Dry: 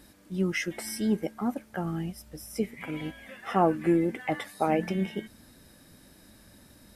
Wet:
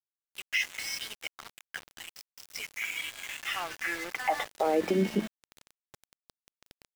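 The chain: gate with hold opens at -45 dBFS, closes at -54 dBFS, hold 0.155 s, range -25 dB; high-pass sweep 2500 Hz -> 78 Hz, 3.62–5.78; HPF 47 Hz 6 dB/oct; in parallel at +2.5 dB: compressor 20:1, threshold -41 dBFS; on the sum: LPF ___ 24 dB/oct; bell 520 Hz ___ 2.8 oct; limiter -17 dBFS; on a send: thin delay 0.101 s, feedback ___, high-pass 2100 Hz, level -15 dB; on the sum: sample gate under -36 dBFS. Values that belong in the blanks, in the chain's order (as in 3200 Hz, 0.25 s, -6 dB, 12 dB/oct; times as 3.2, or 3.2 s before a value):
6700 Hz, +2 dB, 74%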